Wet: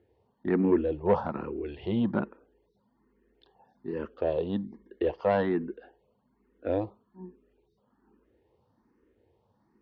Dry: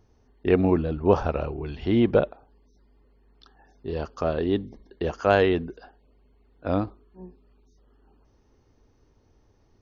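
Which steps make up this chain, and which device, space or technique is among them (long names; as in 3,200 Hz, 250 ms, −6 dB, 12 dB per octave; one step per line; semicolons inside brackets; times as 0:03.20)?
barber-pole phaser into a guitar amplifier (frequency shifter mixed with the dry sound +1.2 Hz; soft clipping −15.5 dBFS, distortion −16 dB; loudspeaker in its box 84–4,000 Hz, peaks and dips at 210 Hz +9 dB, 340 Hz +7 dB, 500 Hz +8 dB, 950 Hz +7 dB, 1,800 Hz +5 dB)
level −5 dB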